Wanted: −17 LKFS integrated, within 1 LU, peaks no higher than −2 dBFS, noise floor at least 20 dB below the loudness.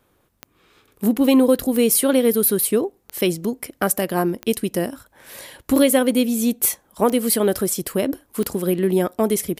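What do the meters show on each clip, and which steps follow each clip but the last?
number of clicks 7; integrated loudness −19.5 LKFS; sample peak −3.5 dBFS; target loudness −17.0 LKFS
→ click removal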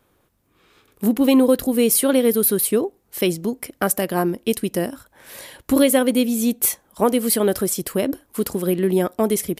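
number of clicks 1; integrated loudness −19.5 LKFS; sample peak −3.5 dBFS; target loudness −17.0 LKFS
→ level +2.5 dB
brickwall limiter −2 dBFS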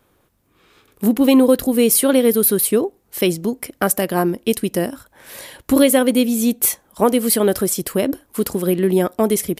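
integrated loudness −17.0 LKFS; sample peak −2.0 dBFS; background noise floor −61 dBFS

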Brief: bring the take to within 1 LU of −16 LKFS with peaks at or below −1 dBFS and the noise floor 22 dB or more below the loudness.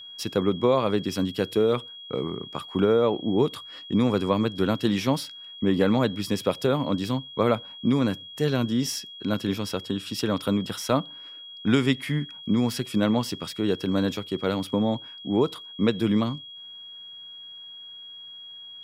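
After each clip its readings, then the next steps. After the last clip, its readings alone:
interfering tone 3,300 Hz; level of the tone −40 dBFS; integrated loudness −25.5 LKFS; sample peak −8.0 dBFS; target loudness −16.0 LKFS
→ notch filter 3,300 Hz, Q 30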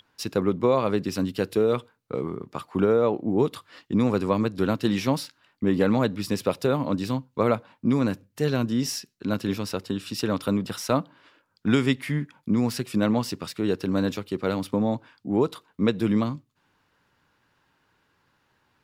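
interfering tone none found; integrated loudness −26.0 LKFS; sample peak −8.5 dBFS; target loudness −16.0 LKFS
→ level +10 dB
brickwall limiter −1 dBFS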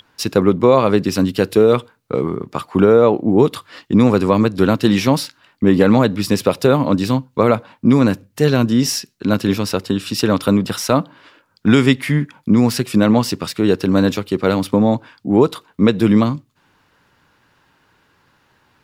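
integrated loudness −16.0 LKFS; sample peak −1.0 dBFS; background noise floor −60 dBFS

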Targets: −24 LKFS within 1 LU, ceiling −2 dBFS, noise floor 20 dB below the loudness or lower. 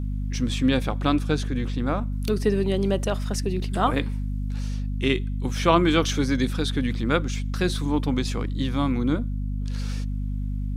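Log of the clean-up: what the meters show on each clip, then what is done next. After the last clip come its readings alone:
mains hum 50 Hz; hum harmonics up to 250 Hz; level of the hum −25 dBFS; integrated loudness −25.0 LKFS; sample peak −4.0 dBFS; target loudness −24.0 LKFS
→ hum removal 50 Hz, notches 5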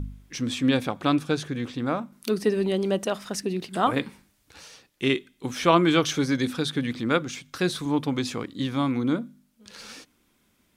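mains hum none found; integrated loudness −26.0 LKFS; sample peak −4.5 dBFS; target loudness −24.0 LKFS
→ level +2 dB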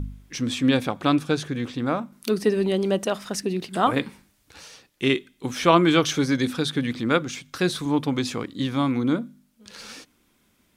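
integrated loudness −24.0 LKFS; sample peak −2.5 dBFS; background noise floor −65 dBFS

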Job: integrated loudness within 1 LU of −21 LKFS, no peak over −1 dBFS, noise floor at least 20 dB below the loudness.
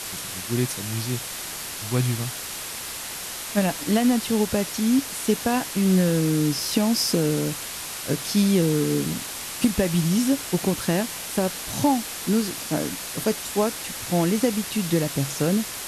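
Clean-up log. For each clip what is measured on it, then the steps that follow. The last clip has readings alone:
background noise floor −34 dBFS; target noise floor −44 dBFS; integrated loudness −24.0 LKFS; sample peak −7.0 dBFS; target loudness −21.0 LKFS
→ noise reduction from a noise print 10 dB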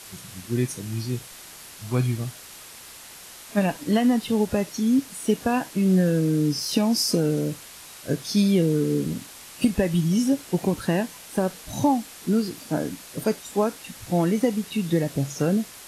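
background noise floor −44 dBFS; target noise floor −45 dBFS
→ noise reduction from a noise print 6 dB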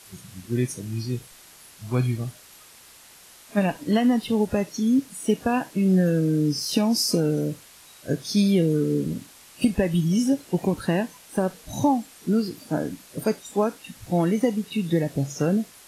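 background noise floor −50 dBFS; integrated loudness −24.5 LKFS; sample peak −7.5 dBFS; target loudness −21.0 LKFS
→ level +3.5 dB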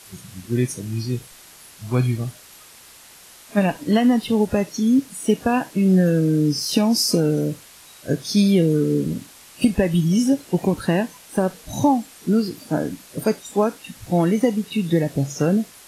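integrated loudness −21.0 LKFS; sample peak −4.0 dBFS; background noise floor −46 dBFS

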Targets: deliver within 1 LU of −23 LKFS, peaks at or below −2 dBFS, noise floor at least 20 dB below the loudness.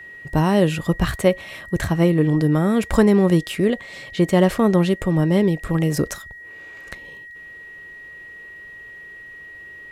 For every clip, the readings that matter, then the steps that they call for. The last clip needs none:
interfering tone 1,900 Hz; level of the tone −37 dBFS; integrated loudness −19.0 LKFS; sample peak −2.0 dBFS; target loudness −23.0 LKFS
→ notch filter 1,900 Hz, Q 30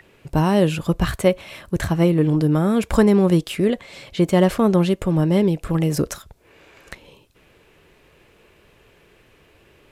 interfering tone none found; integrated loudness −19.5 LKFS; sample peak −2.5 dBFS; target loudness −23.0 LKFS
→ level −3.5 dB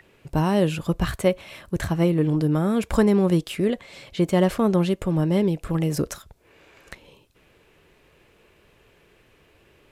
integrated loudness −23.0 LKFS; sample peak −6.0 dBFS; background noise floor −59 dBFS

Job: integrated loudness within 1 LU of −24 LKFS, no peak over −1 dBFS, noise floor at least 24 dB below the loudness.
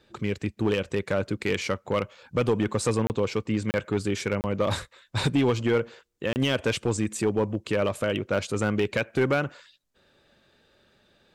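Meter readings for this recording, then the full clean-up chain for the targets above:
share of clipped samples 1.0%; peaks flattened at −16.5 dBFS; number of dropouts 4; longest dropout 29 ms; integrated loudness −27.0 LKFS; sample peak −16.5 dBFS; target loudness −24.0 LKFS
→ clipped peaks rebuilt −16.5 dBFS
repair the gap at 0:03.07/0:03.71/0:04.41/0:06.33, 29 ms
level +3 dB

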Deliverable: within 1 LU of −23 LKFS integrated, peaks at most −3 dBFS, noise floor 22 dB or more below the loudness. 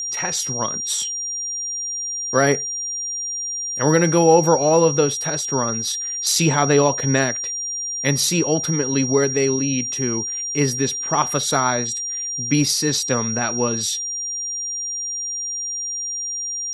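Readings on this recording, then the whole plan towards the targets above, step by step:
interfering tone 5,700 Hz; level of the tone −24 dBFS; integrated loudness −20.0 LKFS; sample peak −2.0 dBFS; target loudness −23.0 LKFS
→ notch filter 5,700 Hz, Q 30
level −3 dB

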